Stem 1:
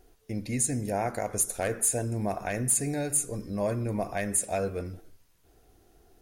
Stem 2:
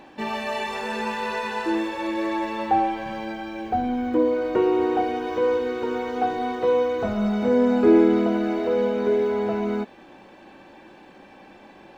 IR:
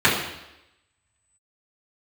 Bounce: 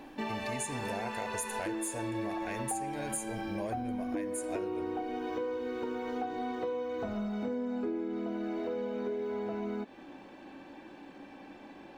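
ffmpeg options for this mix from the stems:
-filter_complex "[0:a]equalizer=frequency=2500:width_type=o:width=2.4:gain=5,volume=-4.5dB[link_01];[1:a]equalizer=frequency=280:width=5.8:gain=10,volume=-4.5dB[link_02];[link_01][link_02]amix=inputs=2:normalize=0,acompressor=threshold=-32dB:ratio=10"

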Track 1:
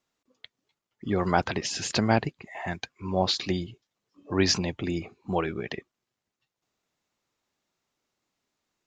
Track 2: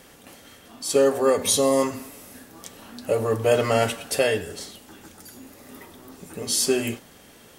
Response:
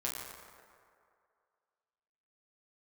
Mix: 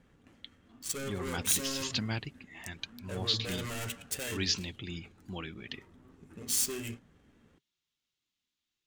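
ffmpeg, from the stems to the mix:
-filter_complex "[0:a]equalizer=frequency=3300:width=1.8:gain=9.5,volume=-3dB[link_01];[1:a]adynamicsmooth=sensitivity=5:basefreq=1200,asoftclip=type=tanh:threshold=-22dB,aexciter=amount=3.8:drive=2.3:freq=6500,volume=-1dB[link_02];[link_01][link_02]amix=inputs=2:normalize=0,equalizer=frequency=640:width_type=o:width=1.9:gain=-13.5,flanger=delay=1.2:depth=3:regen=-68:speed=1:shape=triangular"

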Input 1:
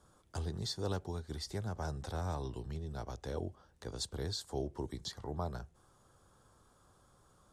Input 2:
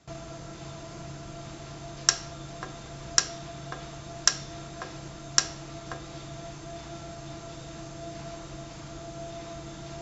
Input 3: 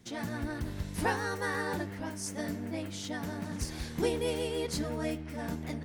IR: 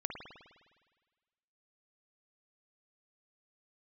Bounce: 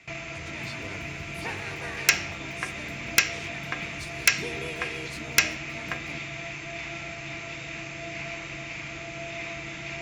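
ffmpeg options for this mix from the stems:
-filter_complex "[0:a]volume=-7.5dB[link_01];[1:a]equalizer=frequency=2100:width=2.2:gain=12.5,aeval=exprs='0.422*(abs(mod(val(0)/0.422+3,4)-2)-1)':channel_layout=same,volume=0dB[link_02];[2:a]adelay=400,volume=-8dB[link_03];[link_01][link_02][link_03]amix=inputs=3:normalize=0,highpass=52,equalizer=frequency=2500:width_type=o:width=0.54:gain=13.5"

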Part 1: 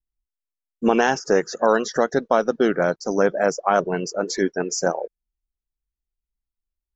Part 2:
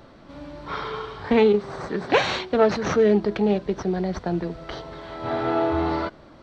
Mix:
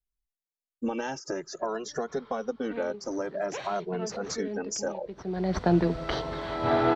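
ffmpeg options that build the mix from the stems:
ffmpeg -i stem1.wav -i stem2.wav -filter_complex "[0:a]equalizer=frequency=1700:width=1.5:gain=-3.5,acompressor=threshold=-24dB:ratio=3,asplit=2[link_01][link_02];[link_02]adelay=2.4,afreqshift=0.51[link_03];[link_01][link_03]amix=inputs=2:normalize=1,volume=-2dB,asplit=2[link_04][link_05];[1:a]dynaudnorm=framelen=260:gausssize=11:maxgain=11.5dB,adelay=1400,volume=-3dB[link_06];[link_05]apad=whole_len=345203[link_07];[link_06][link_07]sidechaincompress=threshold=-50dB:ratio=12:attack=16:release=432[link_08];[link_04][link_08]amix=inputs=2:normalize=0" out.wav

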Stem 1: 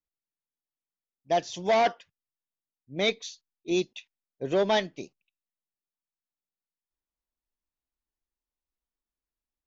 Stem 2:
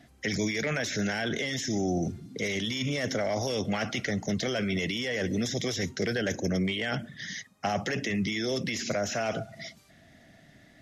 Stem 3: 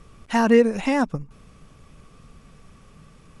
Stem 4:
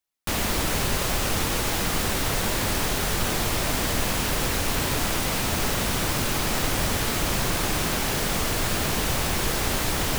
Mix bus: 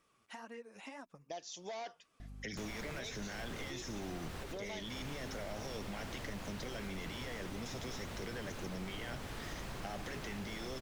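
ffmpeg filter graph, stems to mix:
ffmpeg -i stem1.wav -i stem2.wav -i stem3.wav -i stem4.wav -filter_complex "[0:a]bass=frequency=250:gain=-8,treble=frequency=4000:gain=10,alimiter=limit=-18dB:level=0:latency=1:release=38,volume=-8.5dB,asplit=2[link_01][link_02];[1:a]aeval=exprs='val(0)+0.00708*(sin(2*PI*50*n/s)+sin(2*PI*2*50*n/s)/2+sin(2*PI*3*50*n/s)/3+sin(2*PI*4*50*n/s)/4+sin(2*PI*5*50*n/s)/5)':channel_layout=same,adelay=2200,volume=-3.5dB[link_03];[2:a]highpass=frequency=680:poles=1,flanger=delay=3:depth=6.4:regen=39:speed=1.9:shape=sinusoidal,acompressor=threshold=-31dB:ratio=6,volume=-12.5dB[link_04];[3:a]lowpass=frequency=3200:poles=1,adelay=2300,volume=-8dB[link_05];[link_02]apad=whole_len=550727[link_06];[link_05][link_06]sidechaincompress=threshold=-42dB:ratio=8:attack=41:release=280[link_07];[link_01][link_03][link_04][link_07]amix=inputs=4:normalize=0,acompressor=threshold=-46dB:ratio=2.5" out.wav

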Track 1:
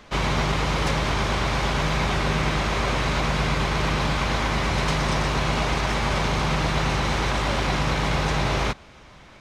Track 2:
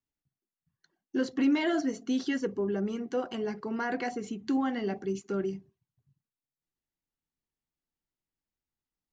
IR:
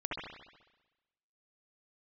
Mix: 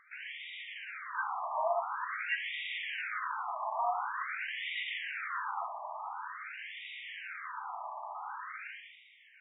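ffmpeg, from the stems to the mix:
-filter_complex "[0:a]acompressor=threshold=-26dB:ratio=6,volume=-3dB,asplit=2[link_01][link_02];[link_02]volume=-8.5dB[link_03];[1:a]aeval=exprs='val(0)+0.00562*(sin(2*PI*60*n/s)+sin(2*PI*2*60*n/s)/2+sin(2*PI*3*60*n/s)/3+sin(2*PI*4*60*n/s)/4+sin(2*PI*5*60*n/s)/5)':channel_layout=same,volume=1.5dB,asplit=3[link_04][link_05][link_06];[link_05]volume=-8.5dB[link_07];[link_06]apad=whole_len=414653[link_08];[link_01][link_08]sidechaingate=range=-11dB:threshold=-42dB:ratio=16:detection=peak[link_09];[2:a]atrim=start_sample=2205[link_10];[link_03][link_07]amix=inputs=2:normalize=0[link_11];[link_11][link_10]afir=irnorm=-1:irlink=0[link_12];[link_09][link_04][link_12]amix=inputs=3:normalize=0,afftfilt=real='re*between(b*sr/1024,850*pow(2700/850,0.5+0.5*sin(2*PI*0.47*pts/sr))/1.41,850*pow(2700/850,0.5+0.5*sin(2*PI*0.47*pts/sr))*1.41)':imag='im*between(b*sr/1024,850*pow(2700/850,0.5+0.5*sin(2*PI*0.47*pts/sr))/1.41,850*pow(2700/850,0.5+0.5*sin(2*PI*0.47*pts/sr))*1.41)':win_size=1024:overlap=0.75"

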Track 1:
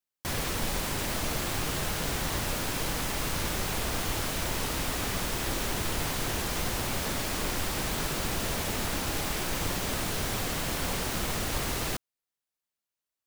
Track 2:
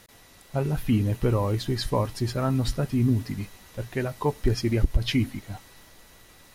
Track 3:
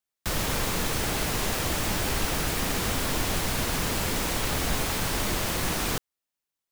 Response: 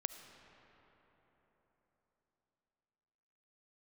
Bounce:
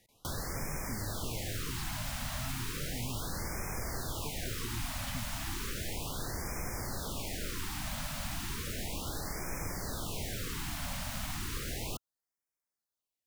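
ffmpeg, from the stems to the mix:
-filter_complex "[0:a]volume=-2.5dB[link_01];[1:a]volume=-14dB[link_02];[2:a]highpass=630,volume=-10.5dB[link_03];[link_01][link_02][link_03]amix=inputs=3:normalize=0,acrossover=split=140|1500[link_04][link_05][link_06];[link_04]acompressor=threshold=-36dB:ratio=4[link_07];[link_05]acompressor=threshold=-42dB:ratio=4[link_08];[link_06]acompressor=threshold=-40dB:ratio=4[link_09];[link_07][link_08][link_09]amix=inputs=3:normalize=0,afftfilt=real='re*(1-between(b*sr/1024,370*pow(3600/370,0.5+0.5*sin(2*PI*0.34*pts/sr))/1.41,370*pow(3600/370,0.5+0.5*sin(2*PI*0.34*pts/sr))*1.41))':imag='im*(1-between(b*sr/1024,370*pow(3600/370,0.5+0.5*sin(2*PI*0.34*pts/sr))/1.41,370*pow(3600/370,0.5+0.5*sin(2*PI*0.34*pts/sr))*1.41))':win_size=1024:overlap=0.75"

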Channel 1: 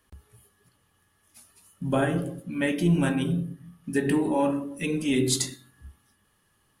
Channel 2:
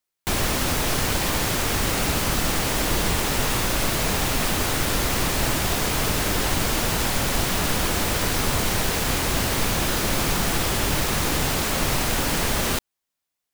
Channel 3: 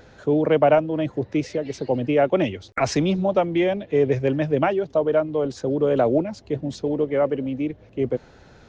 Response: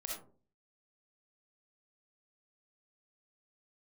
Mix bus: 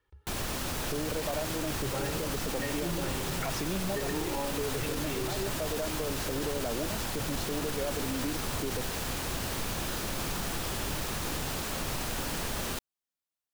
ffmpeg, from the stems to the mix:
-filter_complex "[0:a]lowpass=3600,aecho=1:1:2.2:0.83,volume=-10dB,asplit=2[link_01][link_02];[1:a]equalizer=frequency=2100:width_type=o:width=0.23:gain=-3,volume=-10.5dB[link_03];[2:a]acompressor=threshold=-27dB:ratio=6,adelay=650,volume=-2.5dB[link_04];[link_02]apad=whole_len=411535[link_05];[link_04][link_05]sidechaincompress=threshold=-37dB:ratio=8:attack=16:release=112[link_06];[link_01][link_03][link_06]amix=inputs=3:normalize=0,alimiter=limit=-23dB:level=0:latency=1:release=25"

